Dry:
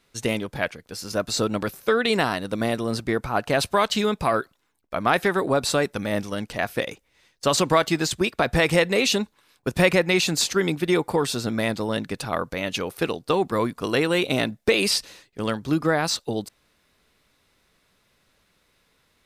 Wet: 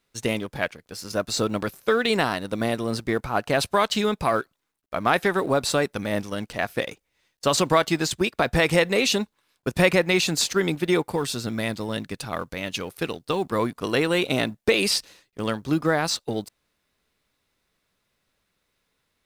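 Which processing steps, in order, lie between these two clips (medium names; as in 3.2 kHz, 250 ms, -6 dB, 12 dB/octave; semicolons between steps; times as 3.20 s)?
companding laws mixed up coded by A; 11.05–13.45 s: peaking EQ 680 Hz -4 dB 2.9 oct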